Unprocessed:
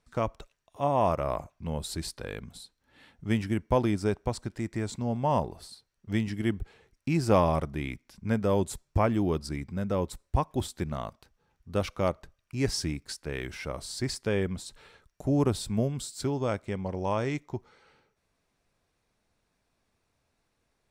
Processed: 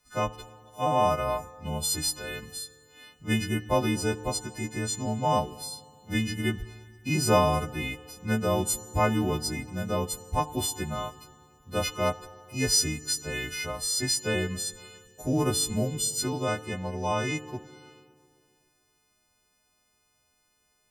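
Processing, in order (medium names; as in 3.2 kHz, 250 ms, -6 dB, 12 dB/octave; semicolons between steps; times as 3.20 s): partials quantised in pitch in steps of 3 st; FDN reverb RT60 2.5 s, low-frequency decay 0.9×, high-frequency decay 0.8×, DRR 14.5 dB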